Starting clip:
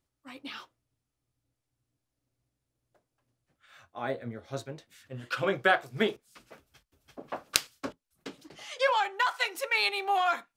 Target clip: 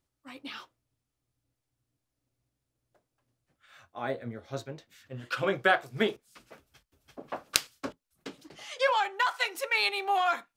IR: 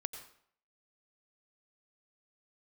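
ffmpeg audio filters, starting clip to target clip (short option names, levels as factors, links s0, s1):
-filter_complex "[0:a]asettb=1/sr,asplit=3[s0][s1][s2];[s0]atrim=end=4.474[s3];[s1]atrim=start=4.47:end=5.25,asetpts=PTS-STARTPTS,afade=t=in:d=0.004:c=qsin,afade=t=out:st=0.776:d=0.004:c=qsin,equalizer=f=9500:t=o:w=0.43:g=-7[s4];[s2]atrim=start=5.246[s5];[s3][s4]acrossfade=d=0.004:c1=hsin:c2=qsin[s6];[s6][s5]acrossfade=d=0.004:c1=qsin:c2=hsin"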